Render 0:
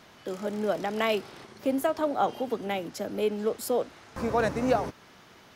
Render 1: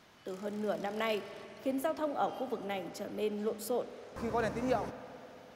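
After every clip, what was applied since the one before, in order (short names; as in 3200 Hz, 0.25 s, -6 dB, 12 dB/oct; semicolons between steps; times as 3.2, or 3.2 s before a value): spring tank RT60 3.9 s, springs 48/53 ms, chirp 75 ms, DRR 12 dB; gain -7 dB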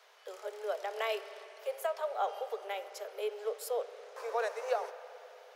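steep high-pass 410 Hz 96 dB/oct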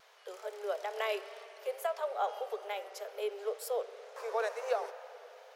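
wow and flutter 55 cents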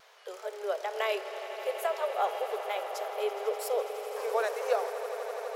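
swelling echo 83 ms, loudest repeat 8, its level -16 dB; gain +3.5 dB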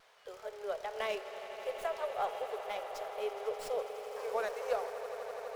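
running maximum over 3 samples; gain -5.5 dB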